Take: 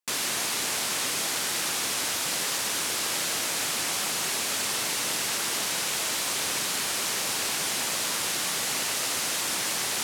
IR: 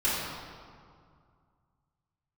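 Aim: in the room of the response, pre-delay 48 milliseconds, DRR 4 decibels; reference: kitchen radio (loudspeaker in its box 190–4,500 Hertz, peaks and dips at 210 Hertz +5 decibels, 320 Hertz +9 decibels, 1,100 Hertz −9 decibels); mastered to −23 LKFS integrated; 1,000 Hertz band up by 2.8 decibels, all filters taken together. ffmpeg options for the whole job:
-filter_complex "[0:a]equalizer=frequency=1000:width_type=o:gain=8,asplit=2[link_01][link_02];[1:a]atrim=start_sample=2205,adelay=48[link_03];[link_02][link_03]afir=irnorm=-1:irlink=0,volume=-16dB[link_04];[link_01][link_04]amix=inputs=2:normalize=0,highpass=190,equalizer=frequency=210:width_type=q:width=4:gain=5,equalizer=frequency=320:width_type=q:width=4:gain=9,equalizer=frequency=1100:width_type=q:width=4:gain=-9,lowpass=frequency=4500:width=0.5412,lowpass=frequency=4500:width=1.3066,volume=4.5dB"

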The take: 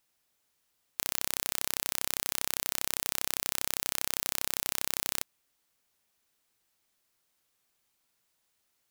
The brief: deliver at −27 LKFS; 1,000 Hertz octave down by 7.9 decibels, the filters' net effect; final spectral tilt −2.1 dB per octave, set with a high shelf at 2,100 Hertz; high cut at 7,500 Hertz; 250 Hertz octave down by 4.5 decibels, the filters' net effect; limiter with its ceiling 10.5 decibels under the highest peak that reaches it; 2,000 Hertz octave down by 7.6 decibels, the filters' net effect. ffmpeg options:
ffmpeg -i in.wav -af "lowpass=7500,equalizer=frequency=250:width_type=o:gain=-5.5,equalizer=frequency=1000:width_type=o:gain=-7.5,equalizer=frequency=2000:width_type=o:gain=-4.5,highshelf=frequency=2100:gain=-5,volume=24.5dB,alimiter=limit=-1dB:level=0:latency=1" out.wav

